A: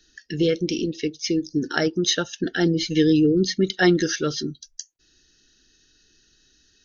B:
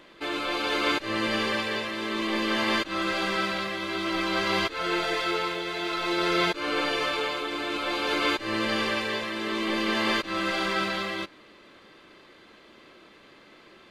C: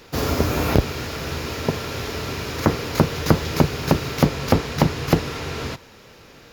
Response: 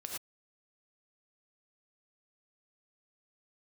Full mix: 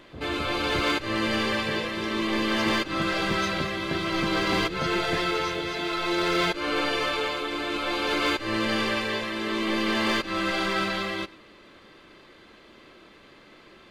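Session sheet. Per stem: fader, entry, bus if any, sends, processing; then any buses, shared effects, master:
-17.5 dB, 1.35 s, no send, dry
0.0 dB, 0.00 s, send -18 dB, low shelf 110 Hz +8 dB
-15.5 dB, 0.00 s, no send, Bessel low-pass 610 Hz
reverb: on, pre-delay 3 ms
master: overloaded stage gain 18.5 dB

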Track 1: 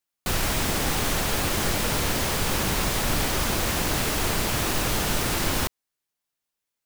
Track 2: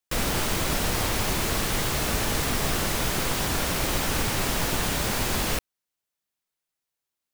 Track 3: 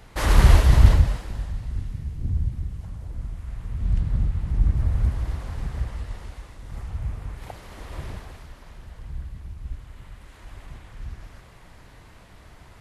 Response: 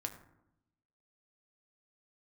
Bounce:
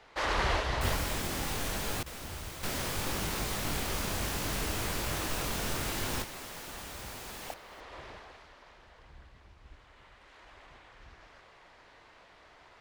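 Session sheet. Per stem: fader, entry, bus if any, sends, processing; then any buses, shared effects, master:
-6.5 dB, 0.55 s, muted 2.03–2.63, no send, echo send -21.5 dB, chorus 0.7 Hz, delay 19 ms, depth 4.5 ms
-16.5 dB, 1.95 s, no send, echo send -18 dB, low shelf 200 Hz -10 dB
-3.0 dB, 0.00 s, no send, no echo send, three-band isolator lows -18 dB, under 350 Hz, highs -21 dB, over 6200 Hz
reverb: off
echo: echo 0.267 s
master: dry

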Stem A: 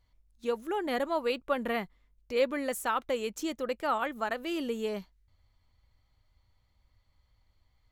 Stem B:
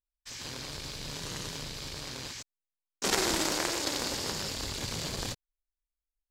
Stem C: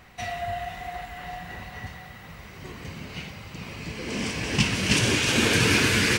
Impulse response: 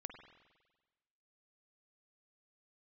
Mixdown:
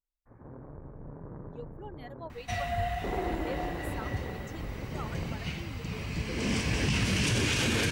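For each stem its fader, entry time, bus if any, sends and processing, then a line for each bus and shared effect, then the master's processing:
-11.0 dB, 1.10 s, no send, per-bin expansion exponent 2
-0.5 dB, 0.00 s, no send, Gaussian blur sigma 8.8 samples
-2.0 dB, 2.30 s, no send, low shelf 110 Hz +11.5 dB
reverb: off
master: limiter -18.5 dBFS, peak gain reduction 11 dB

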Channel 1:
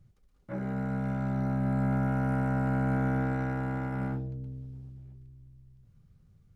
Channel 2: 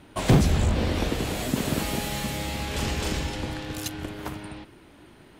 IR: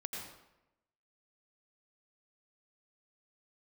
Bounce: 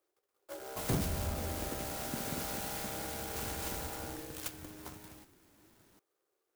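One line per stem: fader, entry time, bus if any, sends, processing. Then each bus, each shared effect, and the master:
-1.0 dB, 0.00 s, no send, steep high-pass 330 Hz 72 dB/oct; compressor, threshold -40 dBFS, peak gain reduction 8 dB
-10.5 dB, 0.60 s, no send, high shelf 2500 Hz +11 dB; flange 0.39 Hz, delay 9.1 ms, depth 5 ms, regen +66%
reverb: off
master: clock jitter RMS 0.097 ms

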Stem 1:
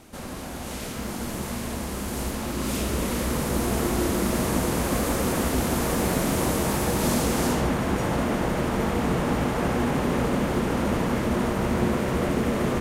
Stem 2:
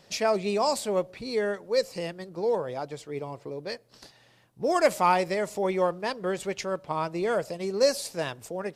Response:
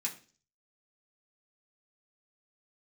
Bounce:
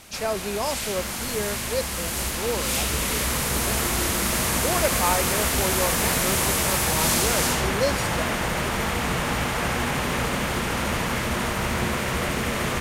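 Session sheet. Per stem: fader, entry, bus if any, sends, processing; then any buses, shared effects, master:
0.0 dB, 0.00 s, no send, EQ curve 110 Hz 0 dB, 290 Hz -7 dB, 2300 Hz +8 dB
-2.5 dB, 0.00 s, no send, dry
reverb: off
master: dry

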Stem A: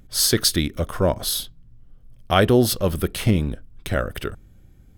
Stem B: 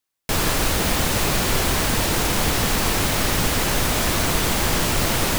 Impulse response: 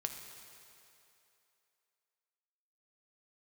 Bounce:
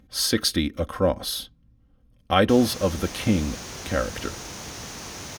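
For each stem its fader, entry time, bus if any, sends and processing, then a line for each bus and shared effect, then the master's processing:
-2.5 dB, 0.00 s, no send, HPF 58 Hz; comb 3.8 ms, depth 54%
-16.5 dB, 2.20 s, no send, HPF 63 Hz; bell 6200 Hz +12.5 dB 0.64 oct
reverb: off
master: high shelf 8400 Hz -10 dB; notch 7600 Hz, Q 8.8

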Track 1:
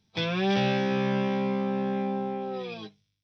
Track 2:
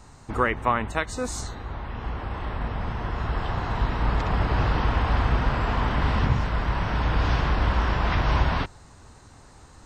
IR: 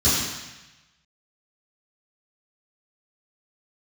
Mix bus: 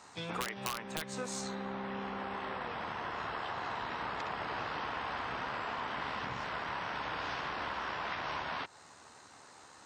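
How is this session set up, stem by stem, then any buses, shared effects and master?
-11.5 dB, 0.00 s, no send, dry
0.0 dB, 0.00 s, no send, weighting filter A; AM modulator 74 Hz, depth 20%; wrapped overs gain 14.5 dB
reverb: off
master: compressor 6:1, threshold -35 dBFS, peak gain reduction 14 dB

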